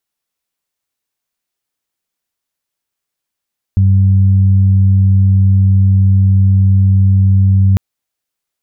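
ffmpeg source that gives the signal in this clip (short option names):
-f lavfi -i "aevalsrc='0.501*sin(2*PI*96.8*t)+0.126*sin(2*PI*193.6*t)':d=4:s=44100"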